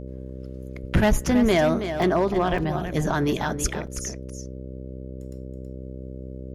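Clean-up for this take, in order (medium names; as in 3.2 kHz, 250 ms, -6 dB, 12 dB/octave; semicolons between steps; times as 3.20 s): de-hum 64.6 Hz, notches 9; interpolate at 2.02/2.58/3.87 s, 3.6 ms; inverse comb 325 ms -9.5 dB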